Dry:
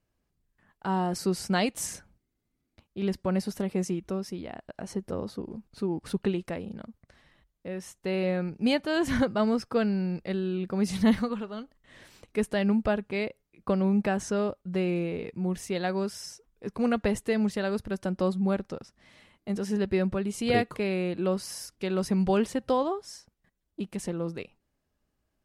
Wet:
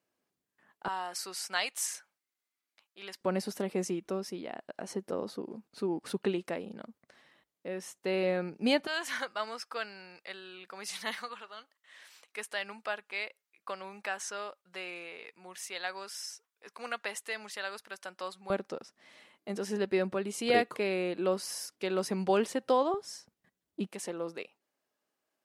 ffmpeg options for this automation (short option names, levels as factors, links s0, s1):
-af "asetnsamples=n=441:p=0,asendcmd='0.88 highpass f 1100;3.21 highpass f 280;8.87 highpass f 1100;18.5 highpass f 320;22.94 highpass f 150;23.87 highpass f 430',highpass=290"